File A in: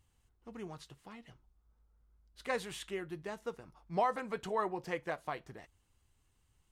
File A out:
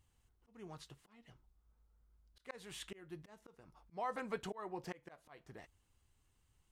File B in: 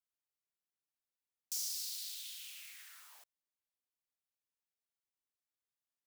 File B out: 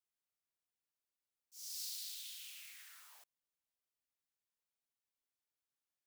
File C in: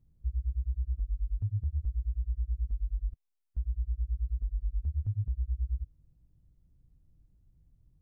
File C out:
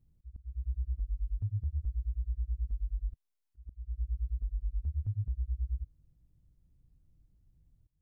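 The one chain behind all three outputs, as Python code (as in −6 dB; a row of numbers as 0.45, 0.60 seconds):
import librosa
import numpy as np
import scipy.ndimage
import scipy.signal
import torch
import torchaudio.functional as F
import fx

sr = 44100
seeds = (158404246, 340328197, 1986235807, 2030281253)

y = fx.auto_swell(x, sr, attack_ms=320.0)
y = F.gain(torch.from_numpy(y), -2.0).numpy()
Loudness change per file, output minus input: −9.0, −5.0, −2.0 LU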